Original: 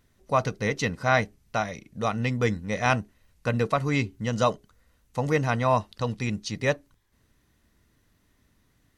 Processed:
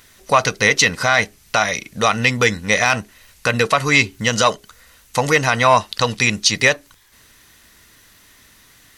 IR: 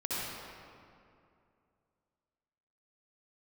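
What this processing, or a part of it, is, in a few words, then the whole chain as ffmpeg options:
mastering chain: -af "equalizer=frequency=460:width_type=o:width=0.77:gain=1.5,acompressor=threshold=-31dB:ratio=1.5,asoftclip=type=tanh:threshold=-16dB,tiltshelf=frequency=810:gain=-8.5,asoftclip=type=hard:threshold=-11.5dB,alimiter=level_in=16.5dB:limit=-1dB:release=50:level=0:latency=1,volume=-1dB"

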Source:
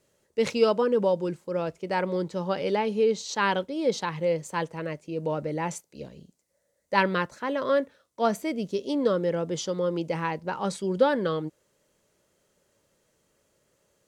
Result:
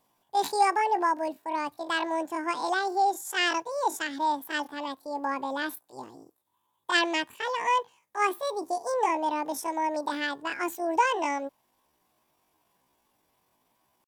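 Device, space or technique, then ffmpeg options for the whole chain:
chipmunk voice: -af "asetrate=78577,aresample=44100,atempo=0.561231,volume=-1.5dB"

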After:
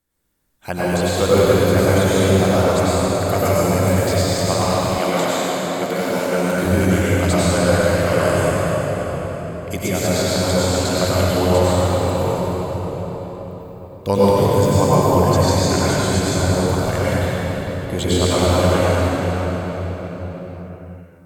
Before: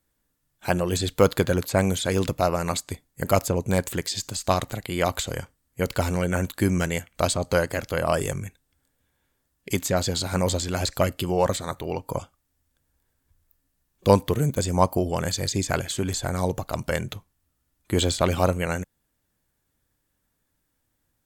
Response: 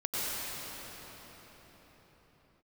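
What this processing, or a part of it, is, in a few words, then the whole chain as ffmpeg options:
cathedral: -filter_complex "[1:a]atrim=start_sample=2205[link_01];[0:a][link_01]afir=irnorm=-1:irlink=0,asettb=1/sr,asplit=3[link_02][link_03][link_04];[link_02]atrim=end=4.984[link_05];[link_03]atrim=start=4.98:end=6.65,asetpts=PTS-STARTPTS,afade=type=in:duration=0.004:curve=qsin,afade=type=out:start_time=1.666:duration=0.004:curve=qsin,highpass=frequency=170:width=0.5412,highpass=frequency=170:width=1.3066[link_06];[link_04]atrim=start=6.646[link_07];[link_05][link_06]acrossfade=duration=0.004:curve1=hsin:curve2=qsin[link_08];[link_08][link_07]acrossfade=duration=0.004:curve1=qsin:curve2=hsin,volume=-1dB"

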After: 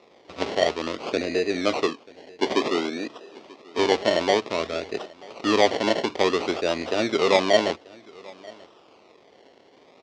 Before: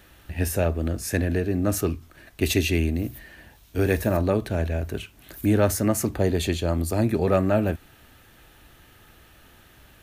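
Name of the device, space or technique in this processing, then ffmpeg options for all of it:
circuit-bent sampling toy: -filter_complex "[0:a]asettb=1/sr,asplit=3[link_01][link_02][link_03];[link_01]atrim=end=1.874[link_04];[link_02]atrim=start=1.87:end=3.78,asetpts=PTS-STARTPTS,afade=type=in:duration=0.004:curve=qsin,afade=type=out:start_time=1.906:duration=0.004:curve=qsin,highpass=frequency=170:width=0.5412,highpass=frequency=170:width=1.3066[link_05];[link_03]atrim=start=3.776[link_06];[link_04][link_05]acrossfade=duration=0.004:curve1=hsin:curve2=qsin[link_07];[link_07][link_06]acrossfade=duration=0.004:curve1=qsin:curve2=hsin,acrusher=samples=28:mix=1:aa=0.000001:lfo=1:lforange=16.8:lforate=0.55,highpass=420,equalizer=frequency=430:width_type=q:width=4:gain=3,equalizer=frequency=900:width_type=q:width=4:gain=-4,equalizer=frequency=1600:width_type=q:width=4:gain=-9,lowpass=frequency=5300:width=0.5412,lowpass=frequency=5300:width=1.3066,aecho=1:1:936:0.0668,volume=5dB"

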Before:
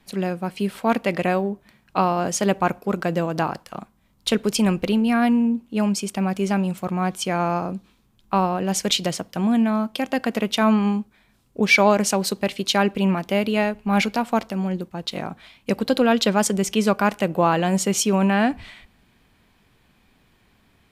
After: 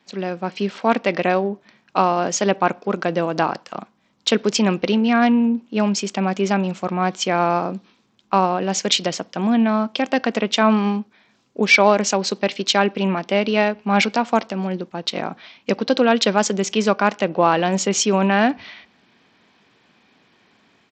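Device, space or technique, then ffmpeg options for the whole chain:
Bluetooth headset: -af "highpass=220,dynaudnorm=framelen=260:gausssize=3:maxgain=5dB,aresample=16000,aresample=44100" -ar 32000 -c:a sbc -b:a 64k

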